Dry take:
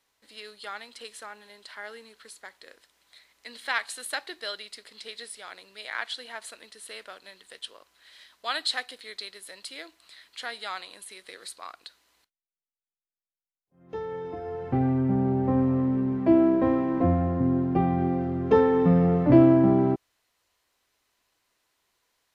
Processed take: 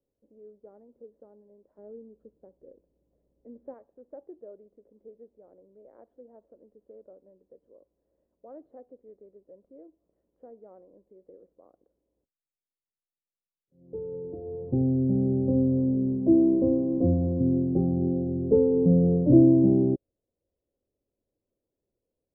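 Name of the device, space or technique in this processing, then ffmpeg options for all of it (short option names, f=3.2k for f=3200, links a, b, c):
under water: -filter_complex "[0:a]asettb=1/sr,asplit=3[a][b][c];[a]atrim=end=1.784[d];[b]atrim=start=1.78:end=3.74,asetpts=PTS-STARTPTS,afade=t=in:d=0.004:c=qsin,afade=t=out:st=1.956:d=0.004:c=qsin,lowshelf=f=350:g=9.5[e];[c]atrim=start=3.736[f];[d][e]acrossfade=d=0.004:c1=hsin:c2=qsin[g];[g][f]acrossfade=d=0.004:c1=qsin:c2=hsin,lowpass=f=460:w=0.5412,lowpass=f=460:w=1.3066,equalizer=f=550:t=o:w=0.23:g=9"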